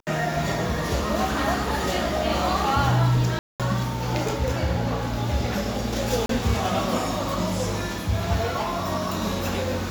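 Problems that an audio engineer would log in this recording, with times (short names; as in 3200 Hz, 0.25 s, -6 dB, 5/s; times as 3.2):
3.39–3.6 gap 0.207 s
6.26–6.29 gap 33 ms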